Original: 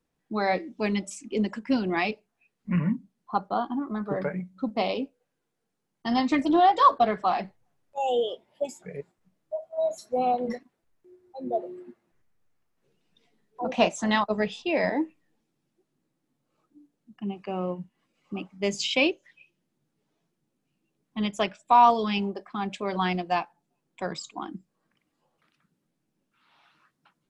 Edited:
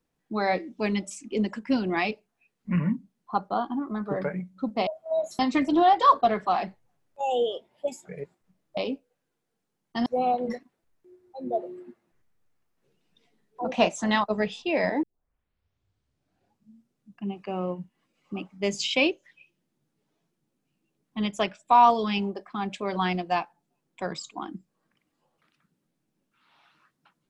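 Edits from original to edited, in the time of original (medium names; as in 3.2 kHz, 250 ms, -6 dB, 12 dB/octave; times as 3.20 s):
4.87–6.16 s: swap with 9.54–10.06 s
15.03 s: tape start 2.25 s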